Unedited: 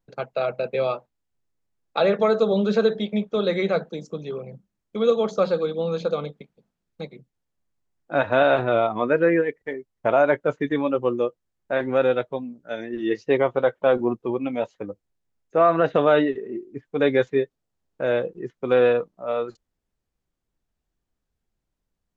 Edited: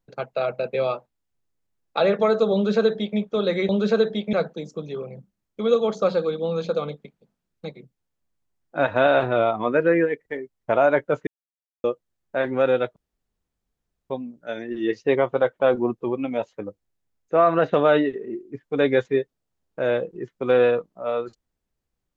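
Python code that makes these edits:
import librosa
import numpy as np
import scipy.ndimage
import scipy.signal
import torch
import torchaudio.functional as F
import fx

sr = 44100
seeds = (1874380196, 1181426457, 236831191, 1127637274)

y = fx.edit(x, sr, fx.duplicate(start_s=2.54, length_s=0.64, to_s=3.69),
    fx.silence(start_s=10.63, length_s=0.57),
    fx.insert_room_tone(at_s=12.32, length_s=1.14), tone=tone)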